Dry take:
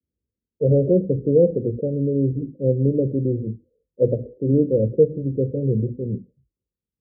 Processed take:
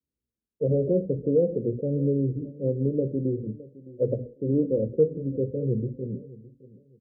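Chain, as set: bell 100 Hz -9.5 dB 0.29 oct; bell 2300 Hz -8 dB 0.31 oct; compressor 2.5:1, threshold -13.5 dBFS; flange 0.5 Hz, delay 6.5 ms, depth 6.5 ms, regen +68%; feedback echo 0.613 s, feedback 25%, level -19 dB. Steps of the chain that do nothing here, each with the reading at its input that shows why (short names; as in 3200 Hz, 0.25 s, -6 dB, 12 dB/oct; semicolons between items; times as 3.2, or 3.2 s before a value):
bell 2300 Hz: input band ends at 640 Hz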